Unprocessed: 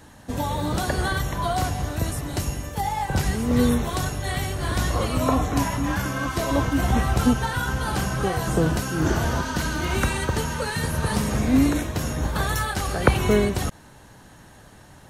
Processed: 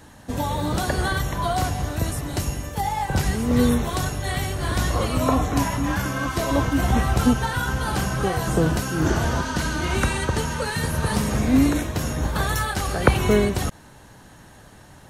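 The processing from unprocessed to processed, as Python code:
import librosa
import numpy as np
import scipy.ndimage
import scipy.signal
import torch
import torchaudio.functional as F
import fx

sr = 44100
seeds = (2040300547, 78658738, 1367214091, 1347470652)

y = fx.lowpass(x, sr, hz=12000.0, slope=24, at=(9.1, 10.65))
y = F.gain(torch.from_numpy(y), 1.0).numpy()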